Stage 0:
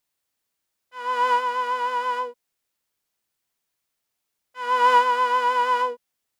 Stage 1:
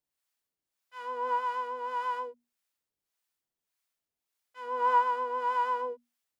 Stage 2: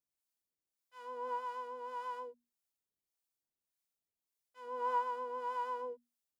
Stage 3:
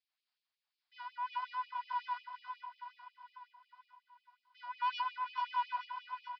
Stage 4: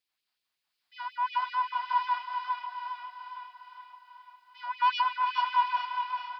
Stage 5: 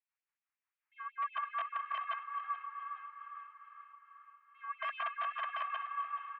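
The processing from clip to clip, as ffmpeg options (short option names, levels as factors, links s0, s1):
-filter_complex "[0:a]bandreject=f=60:t=h:w=6,bandreject=f=120:t=h:w=6,bandreject=f=180:t=h:w=6,bandreject=f=240:t=h:w=6,acrossover=split=660|1300[s0][s1][s2];[s2]acompressor=threshold=0.01:ratio=6[s3];[s0][s1][s3]amix=inputs=3:normalize=0,acrossover=split=640[s4][s5];[s4]aeval=exprs='val(0)*(1-0.7/2+0.7/2*cos(2*PI*1.7*n/s))':c=same[s6];[s5]aeval=exprs='val(0)*(1-0.7/2-0.7/2*cos(2*PI*1.7*n/s))':c=same[s7];[s6][s7]amix=inputs=2:normalize=0,volume=0.631"
-af "equalizer=f=1800:t=o:w=2.4:g=-7.5,volume=0.596"
-af "aresample=11025,asoftclip=type=tanh:threshold=0.0188,aresample=44100,aecho=1:1:433|866|1299|1732|2165|2598|3031:0.447|0.255|0.145|0.0827|0.0472|0.0269|0.0153,afftfilt=real='re*gte(b*sr/1024,570*pow(2300/570,0.5+0.5*sin(2*PI*5.5*pts/sr)))':imag='im*gte(b*sr/1024,570*pow(2300/570,0.5+0.5*sin(2*PI*5.5*pts/sr)))':win_size=1024:overlap=0.75,volume=2.37"
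-af "dynaudnorm=f=320:g=5:m=1.58,aecho=1:1:407|814|1221|1628|2035|2442:0.422|0.211|0.105|0.0527|0.0264|0.0132,volume=1.88"
-filter_complex "[0:a]aeval=exprs='(mod(11.9*val(0)+1,2)-1)/11.9':c=same,asplit=5[s0][s1][s2][s3][s4];[s1]adelay=425,afreqshift=59,volume=0.178[s5];[s2]adelay=850,afreqshift=118,volume=0.0708[s6];[s3]adelay=1275,afreqshift=177,volume=0.0285[s7];[s4]adelay=1700,afreqshift=236,volume=0.0114[s8];[s0][s5][s6][s7][s8]amix=inputs=5:normalize=0,highpass=f=590:t=q:w=0.5412,highpass=f=590:t=q:w=1.307,lowpass=f=2300:t=q:w=0.5176,lowpass=f=2300:t=q:w=0.7071,lowpass=f=2300:t=q:w=1.932,afreqshift=150,volume=0.473"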